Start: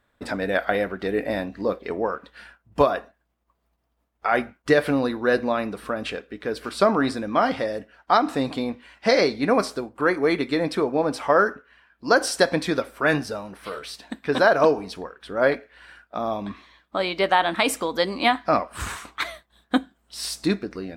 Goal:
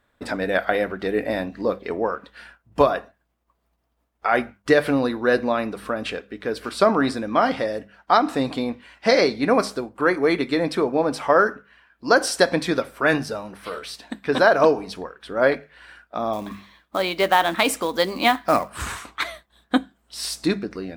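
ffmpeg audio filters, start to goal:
-filter_complex "[0:a]bandreject=f=50:t=h:w=6,bandreject=f=100:t=h:w=6,bandreject=f=150:t=h:w=6,bandreject=f=200:t=h:w=6,asettb=1/sr,asplit=3[s0][s1][s2];[s0]atrim=end=16.334[s3];[s1]atrim=start=16.33:end=18.7,asetpts=PTS-STARTPTS,afade=t=in:d=0.004:c=qsin,afade=t=out:st=2.366:d=0.004:c=qsin,acrusher=bits=5:mode=log:mix=0:aa=0.000001[s4];[s2]atrim=start=18.696[s5];[s3][s4]acrossfade=d=0.004:c1=hsin:c2=qsin[s6];[s6][s5]acrossfade=d=0.004:c1=qsin:c2=hsin,volume=1.19"

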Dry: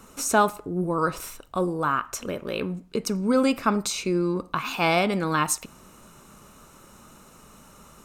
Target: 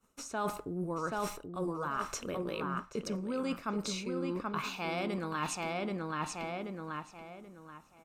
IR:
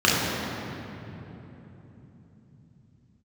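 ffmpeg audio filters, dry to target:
-filter_complex "[0:a]agate=range=0.0224:threshold=0.0141:ratio=3:detection=peak,acrossover=split=6900[s0][s1];[s1]acompressor=threshold=0.00398:ratio=4:attack=1:release=60[s2];[s0][s2]amix=inputs=2:normalize=0,asplit=2[s3][s4];[s4]adelay=781,lowpass=f=3700:p=1,volume=0.562,asplit=2[s5][s6];[s6]adelay=781,lowpass=f=3700:p=1,volume=0.29,asplit=2[s7][s8];[s8]adelay=781,lowpass=f=3700:p=1,volume=0.29,asplit=2[s9][s10];[s10]adelay=781,lowpass=f=3700:p=1,volume=0.29[s11];[s3][s5][s7][s9][s11]amix=inputs=5:normalize=0,areverse,acompressor=threshold=0.0224:ratio=6,areverse"

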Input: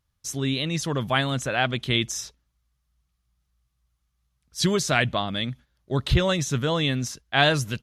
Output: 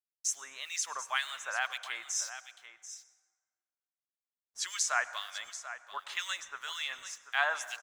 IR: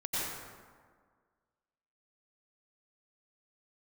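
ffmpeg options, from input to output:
-filter_complex "[0:a]highpass=f=990:w=0.5412,highpass=f=990:w=1.3066,agate=range=0.355:threshold=0.00355:ratio=16:detection=peak,lowpass=f=7100:t=q:w=2,equalizer=f=4000:t=o:w=1.3:g=-11.5,acrusher=bits=8:mix=0:aa=0.5,acrossover=split=1700[s0][s1];[s0]aeval=exprs='val(0)*(1-1/2+1/2*cos(2*PI*2*n/s))':c=same[s2];[s1]aeval=exprs='val(0)*(1-1/2-1/2*cos(2*PI*2*n/s))':c=same[s3];[s2][s3]amix=inputs=2:normalize=0,aecho=1:1:738:0.237,asplit=2[s4][s5];[1:a]atrim=start_sample=2205[s6];[s5][s6]afir=irnorm=-1:irlink=0,volume=0.0891[s7];[s4][s7]amix=inputs=2:normalize=0,volume=1.19"

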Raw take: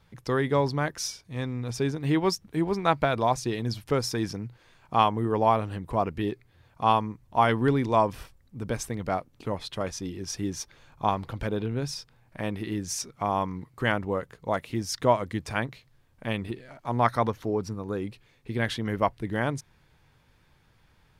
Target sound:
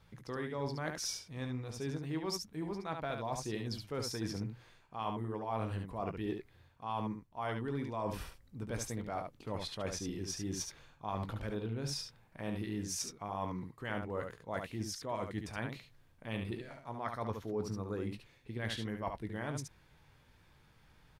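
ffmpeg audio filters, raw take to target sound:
-af "areverse,acompressor=threshold=0.0224:ratio=8,areverse,aecho=1:1:19|71:0.266|0.531,volume=0.708"

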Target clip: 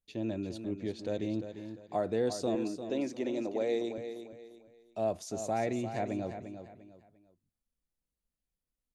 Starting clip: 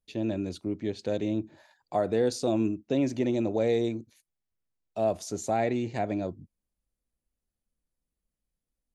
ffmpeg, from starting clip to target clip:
-filter_complex "[0:a]asettb=1/sr,asplit=3[s0][s1][s2];[s0]atrim=end=2.554[s3];[s1]atrim=start=2.55:end=3.98,asetpts=PTS-STARTPTS,afade=t=in:d=0.004:c=qsin,afade=t=out:st=1.426:d=0.004:c=qsin,highpass=280[s4];[s2]atrim=start=3.976[s5];[s3][s4]acrossfade=d=0.004:c1=hsin:c2=qsin[s6];[s6][s5]acrossfade=d=0.004:c1=qsin:c2=hsin,asplit=2[s7][s8];[s8]aecho=0:1:348|696|1044:0.335|0.104|0.0322[s9];[s7][s9]amix=inputs=2:normalize=0,volume=0.562"

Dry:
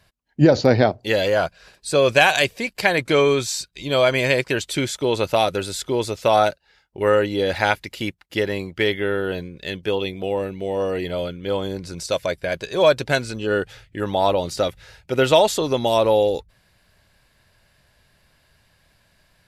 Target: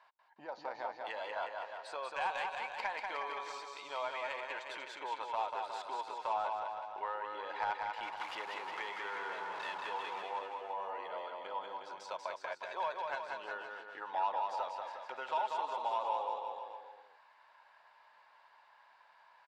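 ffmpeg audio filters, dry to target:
-filter_complex "[0:a]asettb=1/sr,asplit=3[s0][s1][s2];[s0]atrim=end=8.034[s3];[s1]atrim=start=8.03:end=10.22,asetpts=PTS-STARTPTS,afade=t=in:d=0.004:c=qsin,afade=t=out:st=2.186:d=0.004:c=qsin,aeval=exprs='val(0)+0.5*0.0841*sgn(val(0))':c=same[s4];[s2]atrim=start=10.216[s5];[s3][s4]acrossfade=d=0.004:c1=hsin:c2=qsin[s6];[s6][s5]acrossfade=d=0.004:c1=qsin:c2=hsin,acompressor=threshold=0.0141:ratio=3,highpass=f=920:t=q:w=5.9,asoftclip=type=tanh:threshold=0.106,adynamicsmooth=sensitivity=1:basefreq=3000,aecho=1:1:190|361|514.9|653.4|778.1:0.631|0.398|0.251|0.158|0.1,volume=0.562"

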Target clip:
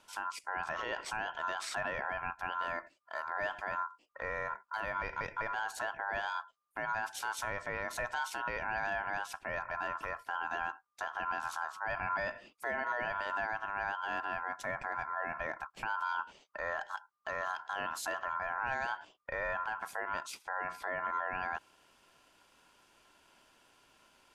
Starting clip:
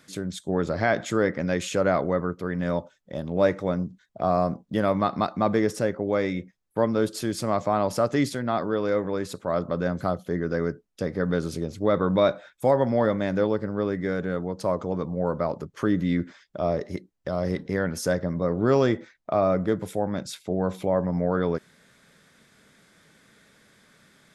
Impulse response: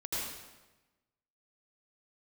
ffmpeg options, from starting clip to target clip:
-af "alimiter=limit=0.112:level=0:latency=1:release=73,aeval=exprs='val(0)*sin(2*PI*1200*n/s)':c=same,volume=0.596"

